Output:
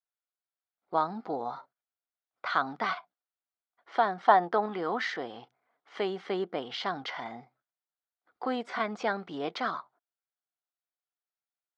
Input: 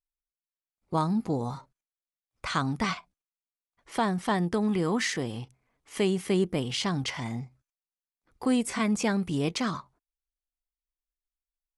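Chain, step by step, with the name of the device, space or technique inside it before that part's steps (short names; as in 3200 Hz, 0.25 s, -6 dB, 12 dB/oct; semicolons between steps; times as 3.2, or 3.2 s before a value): 4.18–4.66 dynamic EQ 860 Hz, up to +8 dB, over -40 dBFS, Q 0.8; phone earpiece (speaker cabinet 410–4000 Hz, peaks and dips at 720 Hz +8 dB, 1400 Hz +7 dB, 2600 Hz -8 dB); gain -1.5 dB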